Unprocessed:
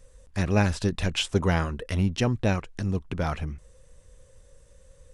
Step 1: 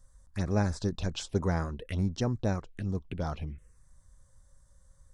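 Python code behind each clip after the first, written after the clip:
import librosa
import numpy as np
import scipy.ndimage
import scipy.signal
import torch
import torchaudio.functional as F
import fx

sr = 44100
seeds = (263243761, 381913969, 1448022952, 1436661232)

y = fx.env_phaser(x, sr, low_hz=410.0, high_hz=2900.0, full_db=-22.0)
y = y * librosa.db_to_amplitude(-5.0)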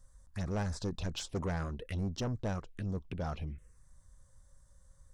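y = 10.0 ** (-28.5 / 20.0) * np.tanh(x / 10.0 ** (-28.5 / 20.0))
y = y * librosa.db_to_amplitude(-1.0)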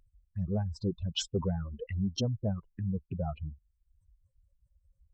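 y = fx.spec_expand(x, sr, power=2.3)
y = fx.dereverb_blind(y, sr, rt60_s=0.63)
y = fx.highpass(y, sr, hz=150.0, slope=6)
y = y * librosa.db_to_amplitude(8.5)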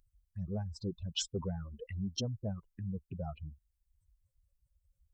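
y = fx.high_shelf(x, sr, hz=4100.0, db=9.0)
y = y * librosa.db_to_amplitude(-6.0)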